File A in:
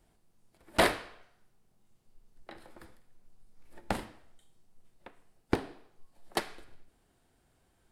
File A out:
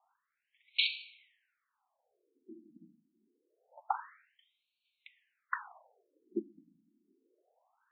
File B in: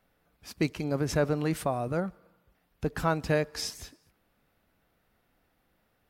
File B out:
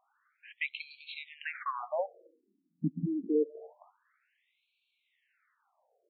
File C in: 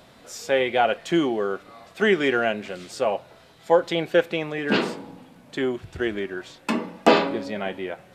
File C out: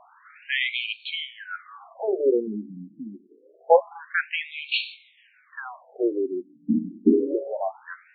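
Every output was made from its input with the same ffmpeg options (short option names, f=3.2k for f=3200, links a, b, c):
-af "afftfilt=real='re*between(b*sr/1024,230*pow(3200/230,0.5+0.5*sin(2*PI*0.26*pts/sr))/1.41,230*pow(3200/230,0.5+0.5*sin(2*PI*0.26*pts/sr))*1.41)':imag='im*between(b*sr/1024,230*pow(3200/230,0.5+0.5*sin(2*PI*0.26*pts/sr))/1.41,230*pow(3200/230,0.5+0.5*sin(2*PI*0.26*pts/sr))*1.41)':win_size=1024:overlap=0.75,volume=4.5dB"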